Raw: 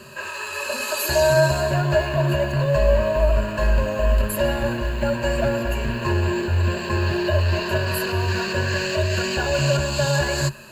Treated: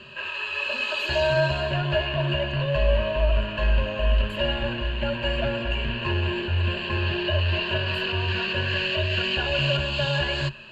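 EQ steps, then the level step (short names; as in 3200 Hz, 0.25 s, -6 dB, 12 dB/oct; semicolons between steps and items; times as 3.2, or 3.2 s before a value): synth low-pass 3100 Hz, resonance Q 5; low shelf 61 Hz +6.5 dB; -6.0 dB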